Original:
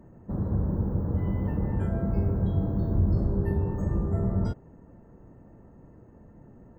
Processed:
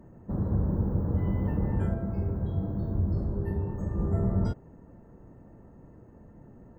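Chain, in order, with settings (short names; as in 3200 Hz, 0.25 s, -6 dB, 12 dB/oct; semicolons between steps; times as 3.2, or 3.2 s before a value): 1.94–3.99 flange 1.1 Hz, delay 8.2 ms, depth 5.9 ms, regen -65%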